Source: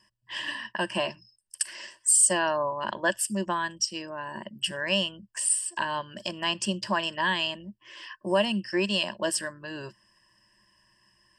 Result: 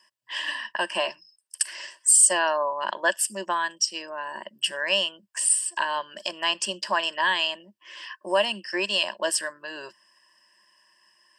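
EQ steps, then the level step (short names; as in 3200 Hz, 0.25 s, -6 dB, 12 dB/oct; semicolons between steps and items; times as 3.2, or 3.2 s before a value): HPF 500 Hz 12 dB/oct; +3.5 dB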